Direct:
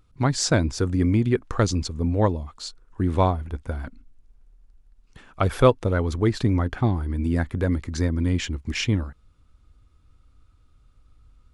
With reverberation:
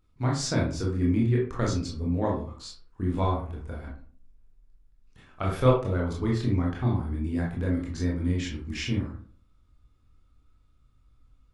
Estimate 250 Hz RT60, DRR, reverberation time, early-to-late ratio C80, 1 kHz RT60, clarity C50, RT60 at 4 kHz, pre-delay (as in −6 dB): 0.60 s, −3.0 dB, 0.45 s, 10.0 dB, 0.45 s, 5.0 dB, 0.25 s, 19 ms